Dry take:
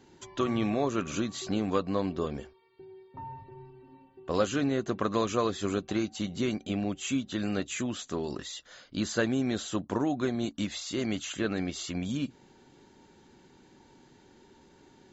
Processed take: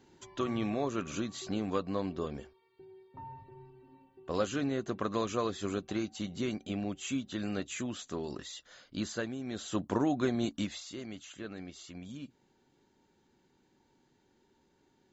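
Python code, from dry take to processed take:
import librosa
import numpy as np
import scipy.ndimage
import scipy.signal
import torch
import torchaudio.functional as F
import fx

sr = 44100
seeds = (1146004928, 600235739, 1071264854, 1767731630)

y = fx.gain(x, sr, db=fx.line((9.02, -4.5), (9.39, -12.0), (9.8, -0.5), (10.55, -0.5), (11.04, -12.5)))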